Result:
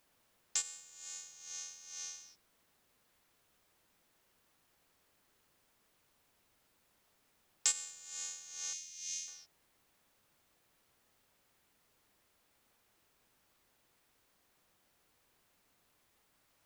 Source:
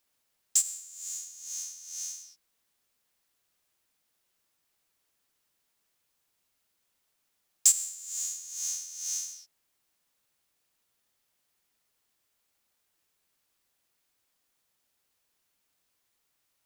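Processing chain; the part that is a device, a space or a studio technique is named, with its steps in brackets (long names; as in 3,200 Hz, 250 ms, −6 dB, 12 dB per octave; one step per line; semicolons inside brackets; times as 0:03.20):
0:08.73–0:09.28: elliptic band-stop filter 270–2,200 Hz
cassette deck with a dirty head (head-to-tape spacing loss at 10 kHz 29 dB; tape wow and flutter 11 cents; white noise bed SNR 27 dB)
level +10.5 dB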